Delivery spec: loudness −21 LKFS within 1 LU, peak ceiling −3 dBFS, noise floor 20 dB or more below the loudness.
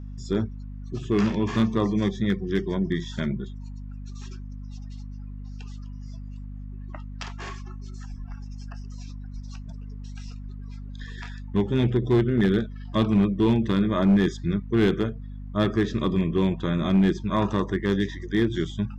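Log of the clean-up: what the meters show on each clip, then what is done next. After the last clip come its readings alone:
share of clipped samples 0.5%; peaks flattened at −13.5 dBFS; mains hum 50 Hz; hum harmonics up to 250 Hz; level of the hum −34 dBFS; integrated loudness −24.5 LKFS; sample peak −13.5 dBFS; target loudness −21.0 LKFS
→ clipped peaks rebuilt −13.5 dBFS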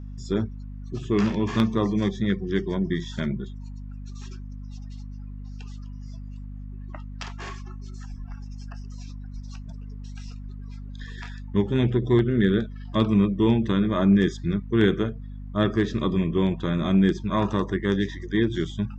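share of clipped samples 0.0%; mains hum 50 Hz; hum harmonics up to 250 Hz; level of the hum −34 dBFS
→ hum removal 50 Hz, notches 5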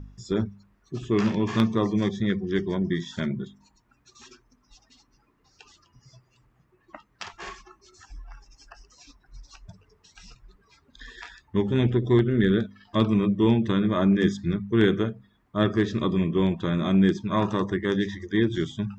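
mains hum none found; integrated loudness −24.5 LKFS; sample peak −4.5 dBFS; target loudness −21.0 LKFS
→ level +3.5 dB
brickwall limiter −3 dBFS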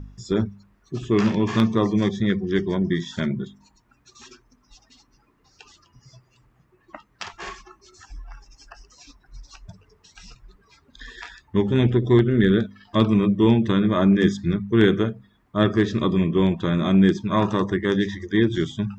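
integrated loudness −21.0 LKFS; sample peak −3.0 dBFS; background noise floor −63 dBFS

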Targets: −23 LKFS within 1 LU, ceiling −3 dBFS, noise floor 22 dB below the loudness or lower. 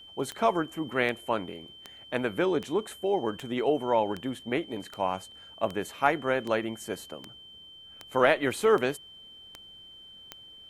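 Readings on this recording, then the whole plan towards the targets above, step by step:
number of clicks 14; interfering tone 3,100 Hz; level of the tone −47 dBFS; integrated loudness −29.0 LKFS; sample peak −8.0 dBFS; target loudness −23.0 LKFS
→ click removal
notch filter 3,100 Hz, Q 30
level +6 dB
brickwall limiter −3 dBFS

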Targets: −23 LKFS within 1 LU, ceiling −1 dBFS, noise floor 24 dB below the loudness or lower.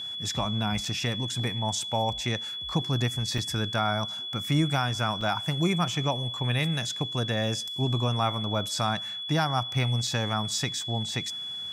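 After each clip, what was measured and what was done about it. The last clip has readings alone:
number of dropouts 4; longest dropout 3.4 ms; interfering tone 3,400 Hz; level of the tone −33 dBFS; integrated loudness −28.0 LKFS; sample peak −11.5 dBFS; target loudness −23.0 LKFS
→ repair the gap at 0:00.85/0:03.38/0:05.21/0:10.07, 3.4 ms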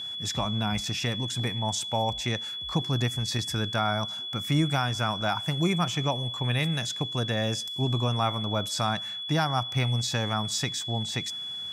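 number of dropouts 0; interfering tone 3,400 Hz; level of the tone −33 dBFS
→ notch filter 3,400 Hz, Q 30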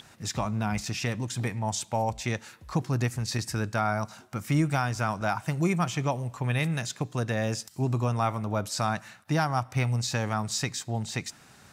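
interfering tone none found; integrated loudness −29.5 LKFS; sample peak −12.0 dBFS; target loudness −23.0 LKFS
→ level +6.5 dB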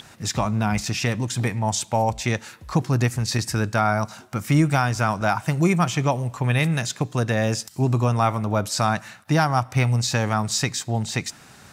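integrated loudness −23.0 LKFS; sample peak −5.5 dBFS; background noise floor −48 dBFS

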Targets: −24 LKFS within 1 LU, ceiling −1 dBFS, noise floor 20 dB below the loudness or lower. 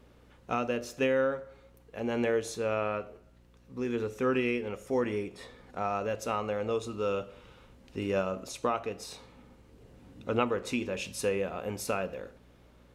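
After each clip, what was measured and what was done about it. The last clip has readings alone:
mains hum 60 Hz; hum harmonics up to 360 Hz; level of the hum −56 dBFS; integrated loudness −32.0 LKFS; sample peak −12.5 dBFS; target loudness −24.0 LKFS
→ hum removal 60 Hz, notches 6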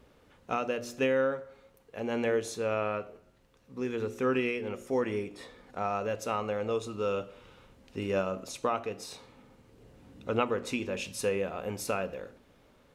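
mains hum none found; integrated loudness −32.5 LKFS; sample peak −13.0 dBFS; target loudness −24.0 LKFS
→ level +8.5 dB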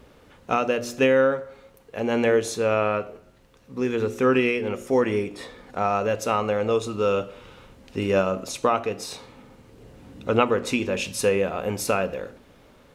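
integrated loudness −24.0 LKFS; sample peak −4.5 dBFS; background noise floor −54 dBFS

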